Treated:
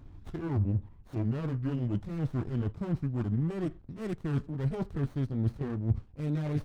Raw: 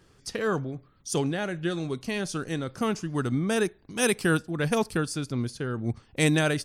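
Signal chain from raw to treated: gliding pitch shift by -5.5 st ending unshifted; reverse; compressor 10:1, threshold -35 dBFS, peak gain reduction 17 dB; reverse; RIAA curve playback; running maximum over 17 samples

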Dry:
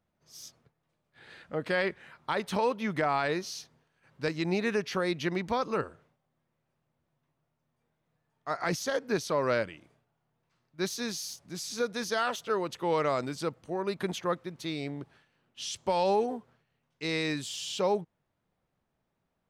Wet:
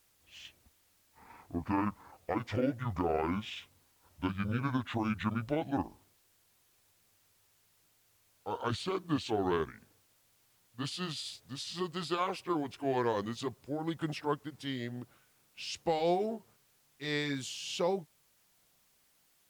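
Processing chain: gliding pitch shift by -11.5 st ending unshifted; added noise white -68 dBFS; gain -1.5 dB; MP3 112 kbps 44100 Hz

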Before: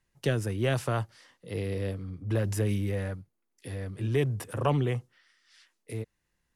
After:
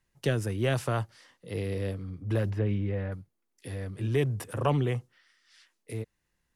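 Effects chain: 2.5–3.12 air absorption 340 m

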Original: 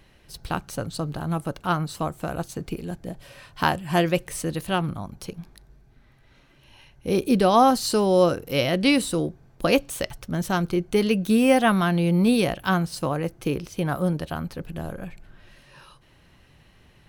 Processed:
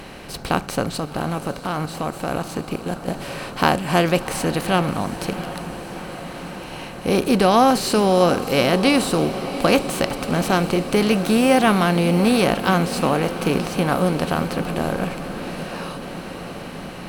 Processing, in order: per-bin compression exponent 0.6; 0.99–3.08 level quantiser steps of 12 dB; diffused feedback echo 0.717 s, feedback 75%, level -13 dB

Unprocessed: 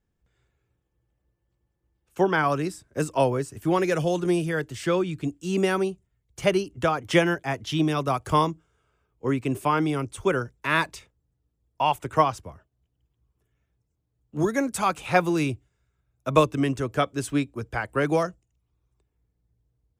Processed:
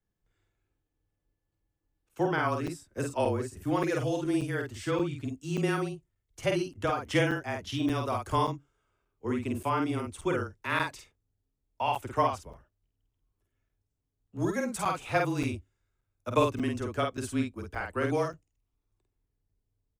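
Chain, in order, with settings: frequency shift -24 Hz; doubler 49 ms -3.5 dB; crackling interface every 0.58 s, samples 256, zero, from 0.93; gain -7 dB

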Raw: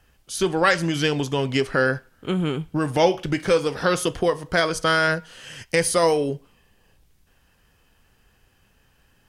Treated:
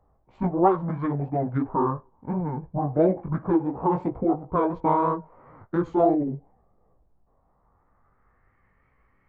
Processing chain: Wiener smoothing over 9 samples; chorus 2.9 Hz, delay 15.5 ms, depth 6.6 ms; low-pass sweep 1100 Hz -> 3200 Hz, 7.38–8.83; formant shift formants -6 st; gain -1 dB

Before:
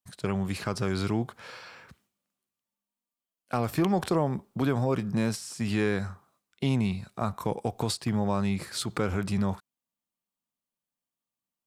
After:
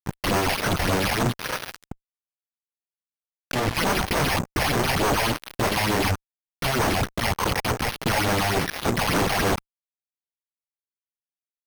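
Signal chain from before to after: limiter -24 dBFS, peak gain reduction 10 dB; notches 60/120/180/240/300/360/420/480/540/600 Hz; wrapped overs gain 34.5 dB; phaser stages 6, 3.4 Hz, lowest notch 310–4400 Hz; careless resampling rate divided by 6×, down filtered, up hold; 1.71–3.77 high shelf 3400 Hz -7.5 dB; fuzz box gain 50 dB, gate -46 dBFS; gain -4.5 dB

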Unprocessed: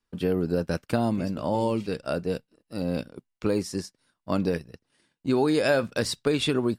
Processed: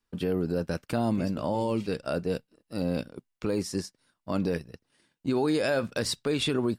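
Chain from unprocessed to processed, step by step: limiter -18 dBFS, peak gain reduction 6.5 dB

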